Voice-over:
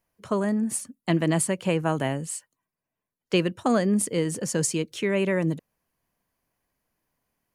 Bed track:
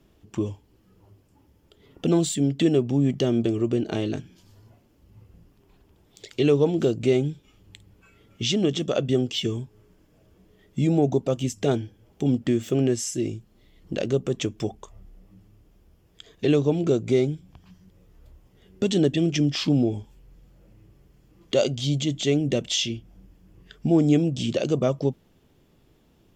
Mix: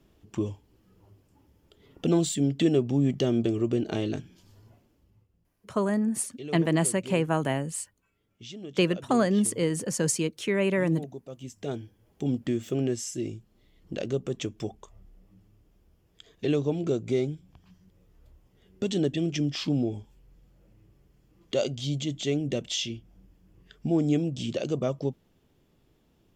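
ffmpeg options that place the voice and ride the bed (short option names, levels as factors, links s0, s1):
-filter_complex "[0:a]adelay=5450,volume=0.891[s0];[1:a]volume=3.35,afade=t=out:st=4.75:d=0.53:silence=0.158489,afade=t=in:st=11.28:d=0.96:silence=0.223872[s1];[s0][s1]amix=inputs=2:normalize=0"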